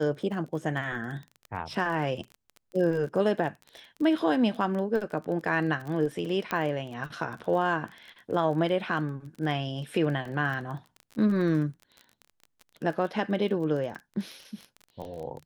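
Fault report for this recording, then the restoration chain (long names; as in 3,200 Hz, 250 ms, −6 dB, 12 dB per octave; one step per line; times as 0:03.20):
surface crackle 25 per second −35 dBFS
0:06.51: click −15 dBFS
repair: click removal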